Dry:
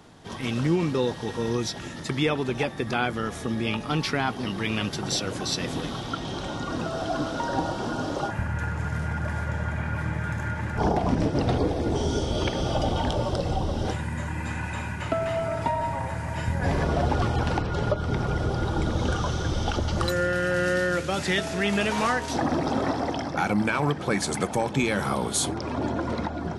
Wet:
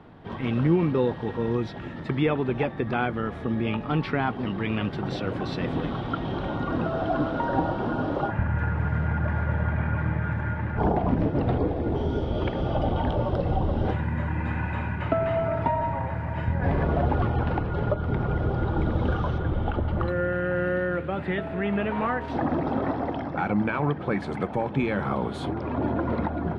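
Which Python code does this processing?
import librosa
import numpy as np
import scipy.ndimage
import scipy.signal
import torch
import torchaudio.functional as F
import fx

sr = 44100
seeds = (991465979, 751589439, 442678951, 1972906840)

y = fx.peak_eq(x, sr, hz=5800.0, db=-13.5, octaves=1.1, at=(19.38, 22.21))
y = fx.rider(y, sr, range_db=4, speed_s=2.0)
y = fx.air_absorb(y, sr, metres=480.0)
y = F.gain(torch.from_numpy(y), 1.5).numpy()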